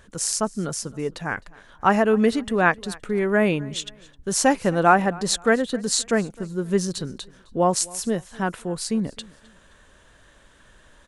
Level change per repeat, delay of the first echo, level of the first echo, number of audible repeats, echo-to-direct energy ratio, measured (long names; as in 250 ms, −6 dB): −9.0 dB, 260 ms, −23.0 dB, 2, −22.5 dB